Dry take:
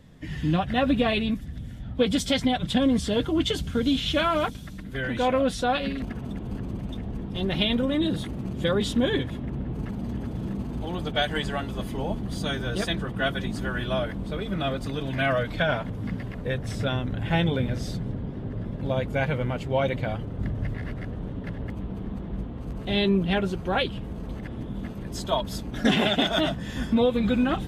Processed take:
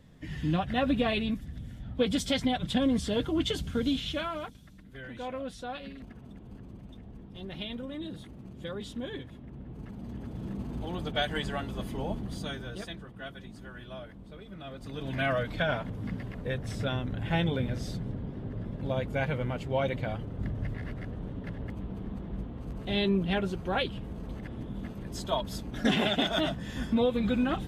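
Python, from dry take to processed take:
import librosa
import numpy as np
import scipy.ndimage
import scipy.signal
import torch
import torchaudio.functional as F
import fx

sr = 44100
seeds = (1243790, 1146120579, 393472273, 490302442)

y = fx.gain(x, sr, db=fx.line((3.86, -4.5), (4.49, -14.0), (9.45, -14.0), (10.69, -4.5), (12.2, -4.5), (13.12, -16.0), (14.66, -16.0), (15.1, -4.5)))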